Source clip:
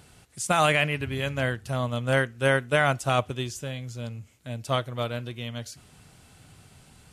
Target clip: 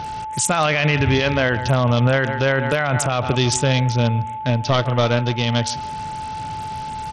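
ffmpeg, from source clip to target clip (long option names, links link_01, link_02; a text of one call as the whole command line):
ffmpeg -i in.wav -filter_complex "[0:a]asettb=1/sr,asplit=3[link_01][link_02][link_03];[link_01]atrim=end=2.724[link_04];[link_02]atrim=start=2.72:end=3.25,asetpts=PTS-STARTPTS,afade=type=in:duration=0.004:curve=qsin,afade=type=out:start_time=0.526:duration=0.004:curve=qsin,highpass=frequency=72:width=0.5412,highpass=frequency=72:width=1.3066[link_05];[link_03]atrim=start=3.246[link_06];[link_04][link_05]acrossfade=duration=0.004:curve1=hsin:curve2=qsin[link_07];[link_07][link_06]acrossfade=duration=0.004:curve1=qsin:curve2=hsin,aecho=1:1:148|296|444:0.0841|0.0294|0.0103,aeval=exprs='val(0)+0.00631*sin(2*PI*870*n/s)':channel_layout=same,asettb=1/sr,asplit=3[link_08][link_09][link_10];[link_08]atrim=end=1.144[link_11];[link_09]atrim=start=1.14:end=1.56,asetpts=PTS-STARTPTS,afade=type=in:duration=0.004:curve=qsin,afade=type=out:start_time=0.416:duration=0.004:curve=qsin,equalizer=frequency=140:width_type=o:width=0.65:gain=-7[link_12];[link_10]atrim=start=1.556[link_13];[link_11][link_12]acrossfade=duration=0.004:curve1=hsin:curve2=qsin[link_14];[link_14][link_13]acrossfade=duration=0.004:curve1=qsin:curve2=hsin,asettb=1/sr,asplit=3[link_15][link_16][link_17];[link_15]atrim=end=4.504[link_18];[link_16]atrim=start=4.5:end=5.42,asetpts=PTS-STARTPTS,afade=type=in:duration=0.004:curve=qsin,afade=type=out:start_time=0.916:duration=0.004:curve=qsin,aeval=exprs='(tanh(5.62*val(0)+0.55)-tanh(0.55))/5.62':channel_layout=same[link_19];[link_17]atrim=start=5.416[link_20];[link_18][link_19]acrossfade=duration=0.004:curve1=hsin:curve2=qsin[link_21];[link_21][link_20]acrossfade=duration=0.004:curve1=qsin:curve2=hsin,alimiter=level_in=25dB:limit=-1dB:release=50:level=0:latency=1,volume=-7.5dB" -ar 48000 -c:a sbc -b:a 64k out.sbc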